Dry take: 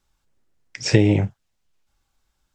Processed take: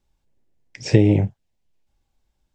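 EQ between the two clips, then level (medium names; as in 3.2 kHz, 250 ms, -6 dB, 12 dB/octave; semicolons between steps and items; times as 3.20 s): peaking EQ 1.3 kHz -10.5 dB 0.69 oct; treble shelf 2.4 kHz -9 dB; +1.5 dB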